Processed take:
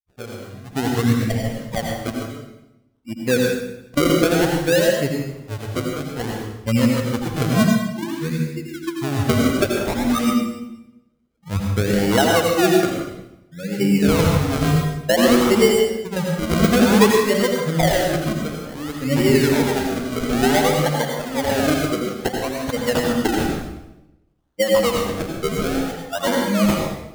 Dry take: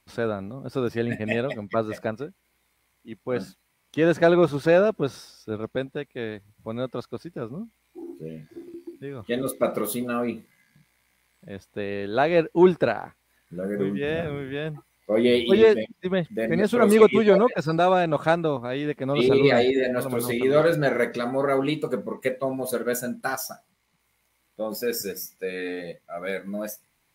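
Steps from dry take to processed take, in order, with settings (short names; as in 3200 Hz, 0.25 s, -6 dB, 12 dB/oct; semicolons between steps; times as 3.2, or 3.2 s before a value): per-bin expansion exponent 2; recorder AGC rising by 16 dB/s; 4.89–5.58 comb 7.3 ms, depth 87%; rotary speaker horn 8 Hz, later 0.9 Hz, at 9.06; decimation with a swept rate 34×, swing 100% 0.56 Hz; reverb RT60 0.90 s, pre-delay 77 ms, DRR 0 dB; gain +2.5 dB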